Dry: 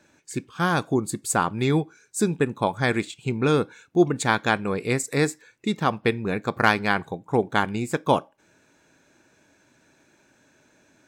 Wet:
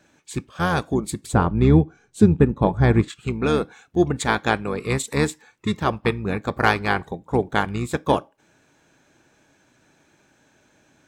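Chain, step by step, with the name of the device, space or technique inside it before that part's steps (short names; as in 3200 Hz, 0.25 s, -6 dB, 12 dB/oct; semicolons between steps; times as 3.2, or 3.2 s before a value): 1.26–3.08 tilt -3.5 dB/oct; octave pedal (harmoniser -12 st -7 dB)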